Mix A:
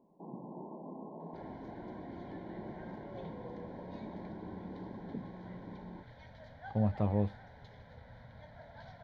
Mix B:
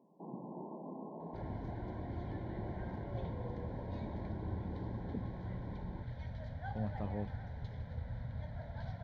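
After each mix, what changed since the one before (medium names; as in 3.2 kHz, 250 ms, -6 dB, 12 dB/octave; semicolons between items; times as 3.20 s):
speech -8.5 dB; second sound: remove high-pass 470 Hz 6 dB/octave; master: add high-pass 60 Hz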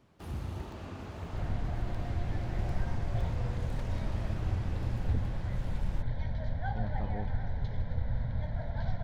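first sound: remove brick-wall FIR band-pass 150–1100 Hz; second sound +7.0 dB; master: remove high-pass 60 Hz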